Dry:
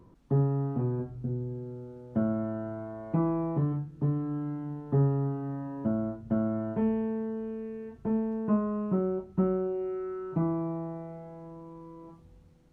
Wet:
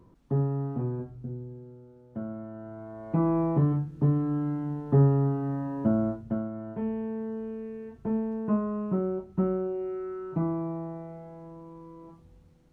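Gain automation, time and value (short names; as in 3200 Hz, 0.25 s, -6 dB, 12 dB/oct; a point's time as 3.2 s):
0.87 s -1 dB
1.81 s -8 dB
2.5 s -8 dB
3.38 s +4.5 dB
6.11 s +4.5 dB
6.51 s -6.5 dB
7.34 s 0 dB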